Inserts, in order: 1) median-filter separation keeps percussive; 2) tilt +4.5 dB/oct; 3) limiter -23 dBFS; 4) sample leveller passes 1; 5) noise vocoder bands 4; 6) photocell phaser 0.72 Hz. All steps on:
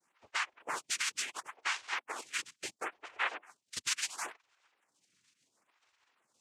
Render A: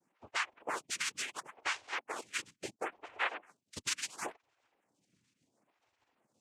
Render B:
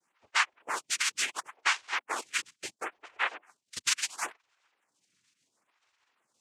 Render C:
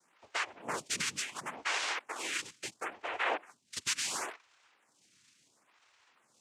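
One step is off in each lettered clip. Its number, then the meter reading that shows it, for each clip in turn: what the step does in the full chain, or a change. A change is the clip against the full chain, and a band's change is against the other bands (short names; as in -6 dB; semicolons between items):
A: 2, 250 Hz band +6.5 dB; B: 3, mean gain reduction 1.5 dB; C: 1, 250 Hz band +6.5 dB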